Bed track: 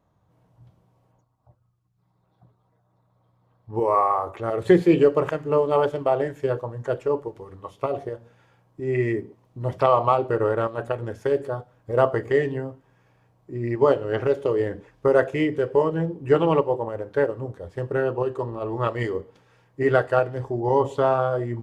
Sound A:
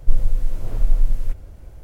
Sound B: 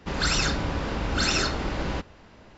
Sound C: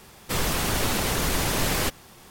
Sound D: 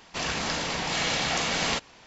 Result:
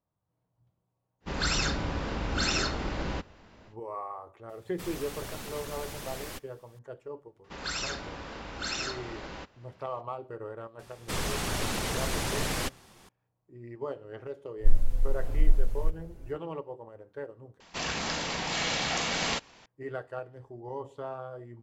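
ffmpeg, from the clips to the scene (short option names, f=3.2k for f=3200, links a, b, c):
-filter_complex "[2:a]asplit=2[a][b];[3:a]asplit=2[c][d];[0:a]volume=-18dB[e];[b]lowshelf=f=310:g=-9[f];[d]lowpass=11k[g];[1:a]asplit=2[h][i];[i]adelay=5.5,afreqshift=-2.5[j];[h][j]amix=inputs=2:normalize=1[k];[e]asplit=2[l][m];[l]atrim=end=17.604[n];[4:a]atrim=end=2.06,asetpts=PTS-STARTPTS,volume=-3dB[o];[m]atrim=start=19.656[p];[a]atrim=end=2.57,asetpts=PTS-STARTPTS,volume=-4dB,afade=t=in:d=0.1,afade=t=out:st=2.47:d=0.1,adelay=1200[q];[c]atrim=end=2.3,asetpts=PTS-STARTPTS,volume=-16dB,afade=t=in:d=0.004:c=hsin,afade=t=out:st=2.296:d=0.004:c=hsin,adelay=198009S[r];[f]atrim=end=2.57,asetpts=PTS-STARTPTS,volume=-8.5dB,afade=t=in:d=0.004:c=hsin,afade=t=out:st=2.566:d=0.004:c=hsin,adelay=7440[s];[g]atrim=end=2.3,asetpts=PTS-STARTPTS,volume=-6dB,afade=t=in:d=0.004:c=hsin,afade=t=out:st=2.296:d=0.004:c=hsin,adelay=10790[t];[k]atrim=end=1.83,asetpts=PTS-STARTPTS,volume=-3dB,afade=t=in:d=0.1,afade=t=out:st=1.73:d=0.1,adelay=14570[u];[n][o]acrossfade=d=0.004:c1=hsin:c2=hsin[v];[v][p]acrossfade=d=0.004:c1=hsin:c2=hsin[w];[w][q][r][s][t][u]amix=inputs=6:normalize=0"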